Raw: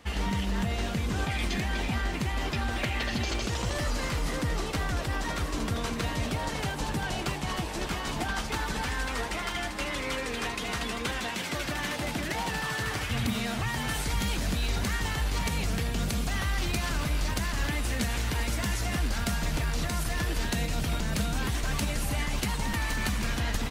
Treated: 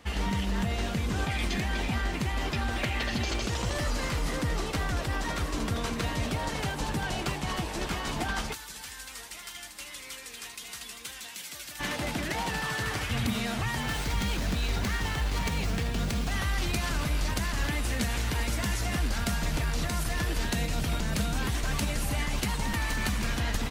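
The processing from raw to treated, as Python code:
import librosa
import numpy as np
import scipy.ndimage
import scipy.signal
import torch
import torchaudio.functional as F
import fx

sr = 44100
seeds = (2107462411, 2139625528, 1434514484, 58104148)

y = fx.pre_emphasis(x, sr, coefficient=0.9, at=(8.52, 11.79), fade=0.02)
y = fx.running_max(y, sr, window=3, at=(13.8, 16.32))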